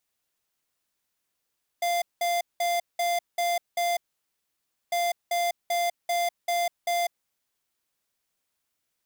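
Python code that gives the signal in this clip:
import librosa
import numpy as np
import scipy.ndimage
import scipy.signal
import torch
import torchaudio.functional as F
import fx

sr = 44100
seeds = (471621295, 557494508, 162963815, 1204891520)

y = fx.beep_pattern(sr, wave='square', hz=694.0, on_s=0.2, off_s=0.19, beeps=6, pause_s=0.95, groups=2, level_db=-25.5)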